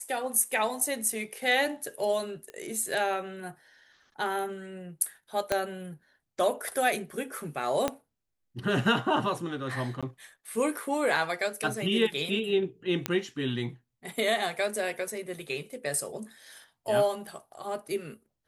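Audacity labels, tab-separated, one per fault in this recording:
2.500000	2.500000	click −27 dBFS
5.520000	5.520000	click −11 dBFS
7.880000	7.880000	click −13 dBFS
10.010000	10.030000	drop-out 16 ms
11.160000	11.160000	drop-out 3 ms
13.060000	13.060000	click −11 dBFS

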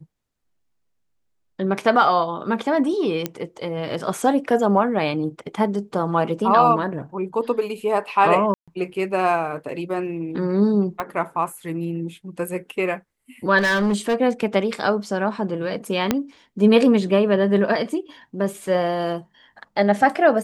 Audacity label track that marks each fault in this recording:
3.260000	3.260000	click −9 dBFS
8.540000	8.680000	drop-out 136 ms
11.000000	11.000000	click −12 dBFS
13.580000	14.150000	clipping −16 dBFS
16.110000	16.110000	click −4 dBFS

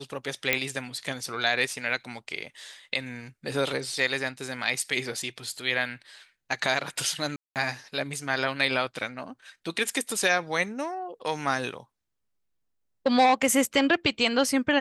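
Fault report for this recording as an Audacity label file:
0.530000	0.530000	click −6 dBFS
7.360000	7.560000	drop-out 198 ms

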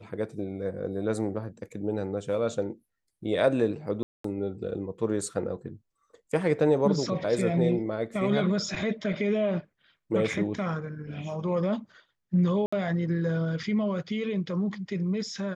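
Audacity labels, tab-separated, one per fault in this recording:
4.030000	4.240000	drop-out 214 ms
12.660000	12.720000	drop-out 65 ms

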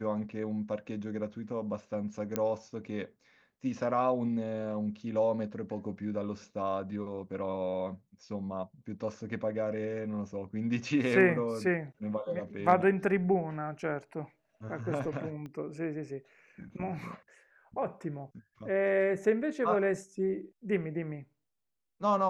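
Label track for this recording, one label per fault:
2.360000	2.360000	click −16 dBFS
15.460000	15.460000	click −32 dBFS

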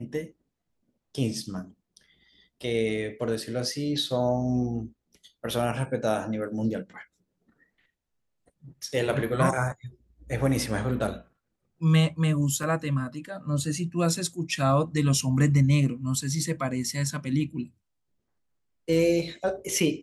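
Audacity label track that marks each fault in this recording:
12.630000	12.630000	drop-out 3.6 ms

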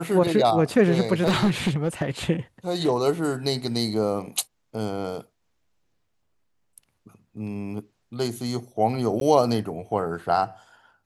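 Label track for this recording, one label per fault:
1.230000	2.040000	clipping −16 dBFS
9.200000	9.210000	drop-out

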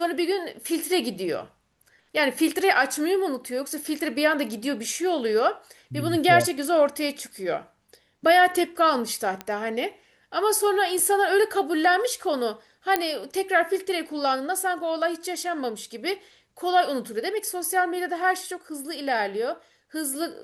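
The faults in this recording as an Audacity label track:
9.410000	9.410000	click −16 dBFS
12.960000	12.960000	click −6 dBFS

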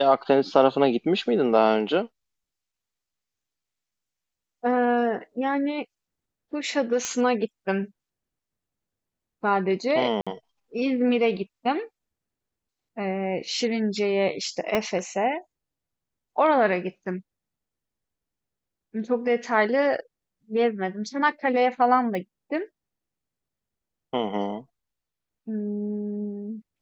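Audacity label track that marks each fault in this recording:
7.050000	7.050000	click −13 dBFS
10.210000	10.270000	drop-out 56 ms
14.750000	14.750000	click −10 dBFS
22.150000	22.150000	click −19 dBFS

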